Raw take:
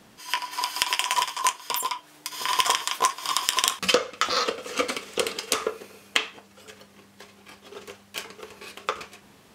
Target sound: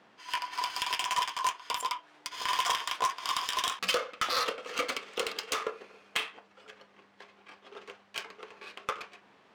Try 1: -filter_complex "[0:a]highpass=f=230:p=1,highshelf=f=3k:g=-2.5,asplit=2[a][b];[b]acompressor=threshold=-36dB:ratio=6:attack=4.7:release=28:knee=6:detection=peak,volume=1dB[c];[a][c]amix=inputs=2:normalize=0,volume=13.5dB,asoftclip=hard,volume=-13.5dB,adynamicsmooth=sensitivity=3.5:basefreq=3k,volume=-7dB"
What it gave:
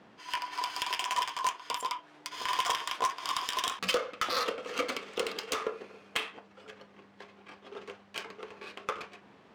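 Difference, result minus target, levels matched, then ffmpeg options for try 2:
compressor: peak gain reduction +9.5 dB; 250 Hz band +5.0 dB
-filter_complex "[0:a]highpass=f=740:p=1,highshelf=f=3k:g=-2.5,asplit=2[a][b];[b]acompressor=threshold=-26.5dB:ratio=6:attack=4.7:release=28:knee=6:detection=peak,volume=1dB[c];[a][c]amix=inputs=2:normalize=0,volume=13.5dB,asoftclip=hard,volume=-13.5dB,adynamicsmooth=sensitivity=3.5:basefreq=3k,volume=-7dB"

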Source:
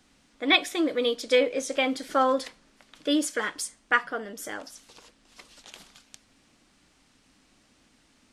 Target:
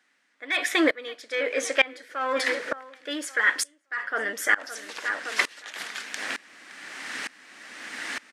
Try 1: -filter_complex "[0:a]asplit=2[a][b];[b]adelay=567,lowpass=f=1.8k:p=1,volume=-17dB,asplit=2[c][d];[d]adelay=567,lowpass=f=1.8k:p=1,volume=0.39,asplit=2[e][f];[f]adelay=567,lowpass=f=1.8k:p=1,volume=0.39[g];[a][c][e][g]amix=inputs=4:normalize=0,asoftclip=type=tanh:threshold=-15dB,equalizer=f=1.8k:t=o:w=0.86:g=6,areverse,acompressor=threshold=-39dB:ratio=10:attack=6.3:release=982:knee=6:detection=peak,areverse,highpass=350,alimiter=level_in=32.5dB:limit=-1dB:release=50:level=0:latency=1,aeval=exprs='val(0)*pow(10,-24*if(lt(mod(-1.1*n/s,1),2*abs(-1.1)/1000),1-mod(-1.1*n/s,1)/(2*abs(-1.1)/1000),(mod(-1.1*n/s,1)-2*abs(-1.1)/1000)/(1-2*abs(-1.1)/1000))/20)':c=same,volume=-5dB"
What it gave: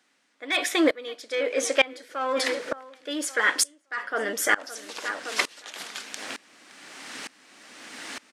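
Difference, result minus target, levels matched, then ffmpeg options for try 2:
2000 Hz band -3.0 dB
-filter_complex "[0:a]asplit=2[a][b];[b]adelay=567,lowpass=f=1.8k:p=1,volume=-17dB,asplit=2[c][d];[d]adelay=567,lowpass=f=1.8k:p=1,volume=0.39,asplit=2[e][f];[f]adelay=567,lowpass=f=1.8k:p=1,volume=0.39[g];[a][c][e][g]amix=inputs=4:normalize=0,asoftclip=type=tanh:threshold=-15dB,equalizer=f=1.8k:t=o:w=0.86:g=15,areverse,acompressor=threshold=-39dB:ratio=10:attack=6.3:release=982:knee=6:detection=peak,areverse,highpass=350,alimiter=level_in=32.5dB:limit=-1dB:release=50:level=0:latency=1,aeval=exprs='val(0)*pow(10,-24*if(lt(mod(-1.1*n/s,1),2*abs(-1.1)/1000),1-mod(-1.1*n/s,1)/(2*abs(-1.1)/1000),(mod(-1.1*n/s,1)-2*abs(-1.1)/1000)/(1-2*abs(-1.1)/1000))/20)':c=same,volume=-5dB"

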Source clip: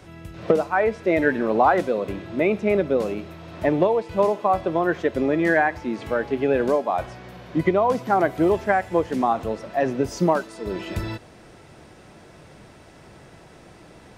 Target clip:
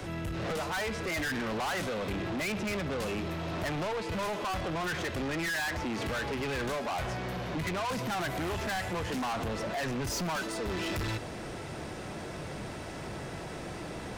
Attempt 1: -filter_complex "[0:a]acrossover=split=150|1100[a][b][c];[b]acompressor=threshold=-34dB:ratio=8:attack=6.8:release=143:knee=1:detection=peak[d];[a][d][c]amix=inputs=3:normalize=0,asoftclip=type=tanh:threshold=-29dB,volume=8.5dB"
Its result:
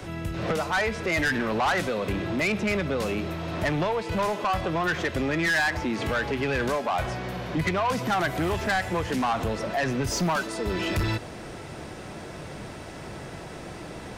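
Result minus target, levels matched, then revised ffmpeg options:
soft clip: distortion -5 dB
-filter_complex "[0:a]acrossover=split=150|1100[a][b][c];[b]acompressor=threshold=-34dB:ratio=8:attack=6.8:release=143:knee=1:detection=peak[d];[a][d][c]amix=inputs=3:normalize=0,asoftclip=type=tanh:threshold=-39.5dB,volume=8.5dB"

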